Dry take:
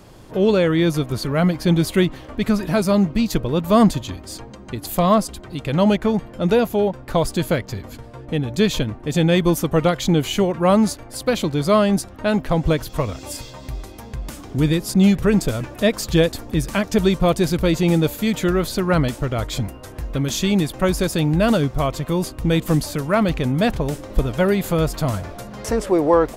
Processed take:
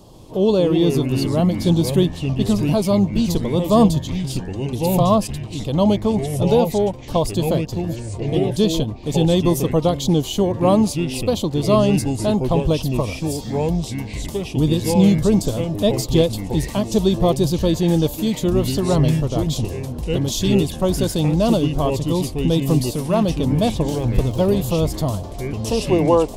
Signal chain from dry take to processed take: 23.89–24.56 crackle 42/s -28 dBFS; band shelf 1800 Hz -15.5 dB 1.1 oct; echoes that change speed 0.139 s, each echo -4 st, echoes 3, each echo -6 dB

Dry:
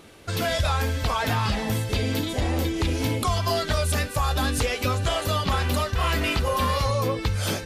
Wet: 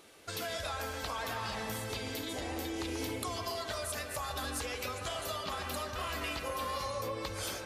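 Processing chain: tone controls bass -11 dB, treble +4 dB; compressor, threshold -27 dBFS, peak gain reduction 6.5 dB; analogue delay 0.136 s, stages 2048, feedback 64%, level -6 dB; gain -8 dB

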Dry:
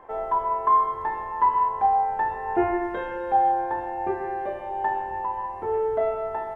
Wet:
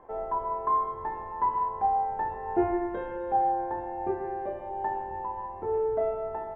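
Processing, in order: tilt shelf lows +6.5 dB, about 1100 Hz; gain -7 dB

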